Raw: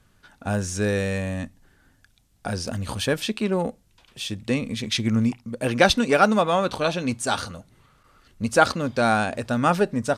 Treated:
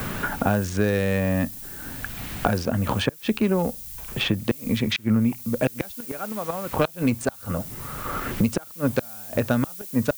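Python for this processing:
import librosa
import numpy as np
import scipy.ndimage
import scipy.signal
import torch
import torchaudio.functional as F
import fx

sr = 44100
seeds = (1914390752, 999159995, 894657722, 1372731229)

y = fx.wiener(x, sr, points=9)
y = fx.high_shelf(y, sr, hz=9600.0, db=-11.5)
y = fx.gate_flip(y, sr, shuts_db=-13.0, range_db=-34)
y = fx.dmg_noise_colour(y, sr, seeds[0], colour='violet', level_db=-47.0)
y = fx.band_squash(y, sr, depth_pct=100)
y = y * librosa.db_to_amplitude(4.0)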